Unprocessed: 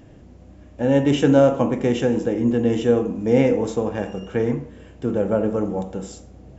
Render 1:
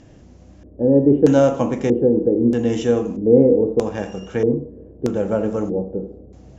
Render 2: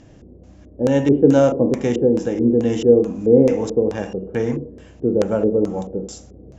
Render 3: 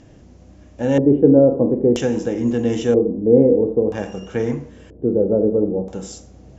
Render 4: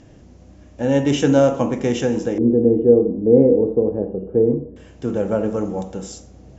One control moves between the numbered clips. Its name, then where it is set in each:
LFO low-pass, rate: 0.79, 2.3, 0.51, 0.21 Hz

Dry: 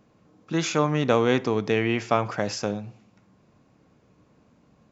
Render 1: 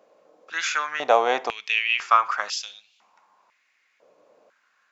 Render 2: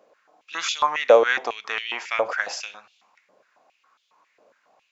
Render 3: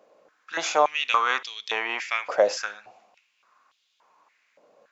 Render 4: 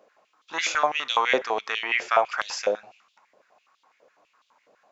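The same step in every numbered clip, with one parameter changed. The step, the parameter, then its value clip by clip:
stepped high-pass, rate: 2, 7.3, 3.5, 12 Hz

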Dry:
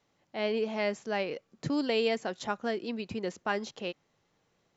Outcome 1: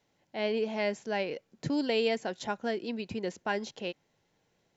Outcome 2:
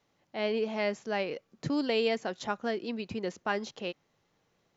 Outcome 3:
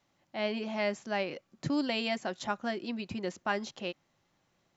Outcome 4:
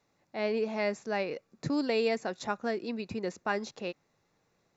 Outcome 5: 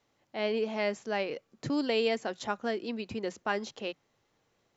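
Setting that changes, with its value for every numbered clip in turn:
notch, frequency: 1200, 7900, 450, 3100, 170 Hz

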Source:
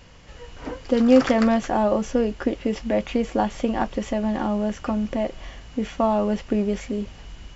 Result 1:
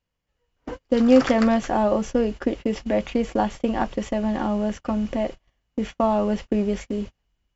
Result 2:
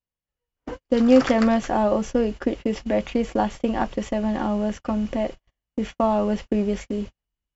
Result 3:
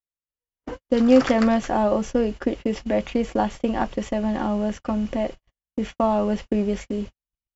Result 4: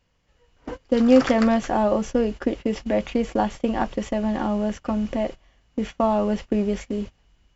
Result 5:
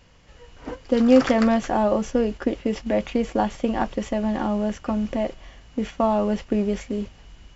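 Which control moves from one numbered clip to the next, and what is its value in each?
gate, range: -33, -46, -59, -20, -6 dB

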